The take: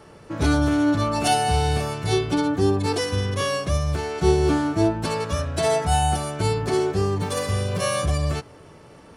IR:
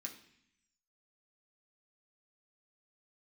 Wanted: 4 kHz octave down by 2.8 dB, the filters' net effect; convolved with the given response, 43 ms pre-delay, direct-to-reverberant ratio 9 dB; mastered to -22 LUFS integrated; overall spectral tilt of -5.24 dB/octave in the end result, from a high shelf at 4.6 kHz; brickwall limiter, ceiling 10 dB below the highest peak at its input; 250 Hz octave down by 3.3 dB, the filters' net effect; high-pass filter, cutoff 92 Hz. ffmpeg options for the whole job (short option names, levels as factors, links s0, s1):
-filter_complex "[0:a]highpass=92,equalizer=f=250:t=o:g=-4.5,equalizer=f=4000:t=o:g=-5.5,highshelf=f=4600:g=3,alimiter=limit=0.119:level=0:latency=1,asplit=2[s0][s1];[1:a]atrim=start_sample=2205,adelay=43[s2];[s1][s2]afir=irnorm=-1:irlink=0,volume=0.531[s3];[s0][s3]amix=inputs=2:normalize=0,volume=1.68"